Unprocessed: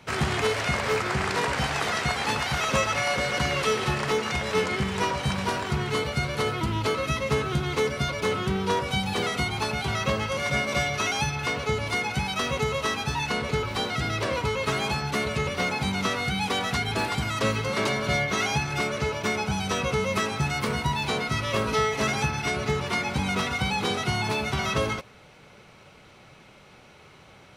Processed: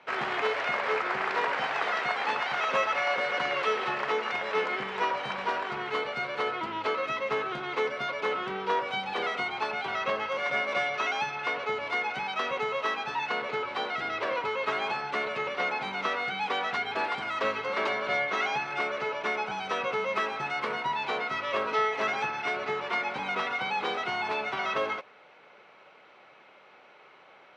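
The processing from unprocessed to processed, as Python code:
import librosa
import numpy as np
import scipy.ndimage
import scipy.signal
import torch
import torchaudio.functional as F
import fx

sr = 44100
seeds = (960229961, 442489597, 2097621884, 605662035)

y = fx.bandpass_edges(x, sr, low_hz=490.0, high_hz=2500.0)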